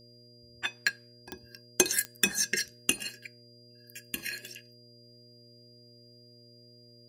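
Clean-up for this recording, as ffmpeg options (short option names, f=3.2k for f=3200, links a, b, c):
-af "adeclick=t=4,bandreject=f=119.6:t=h:w=4,bandreject=f=239.2:t=h:w=4,bandreject=f=358.8:t=h:w=4,bandreject=f=478.4:t=h:w=4,bandreject=f=598:t=h:w=4,bandreject=f=4.8k:w=30,agate=range=-21dB:threshold=-48dB"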